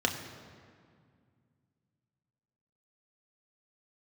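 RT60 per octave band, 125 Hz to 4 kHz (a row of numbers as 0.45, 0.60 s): 3.3, 2.9, 2.1, 2.0, 1.8, 1.4 s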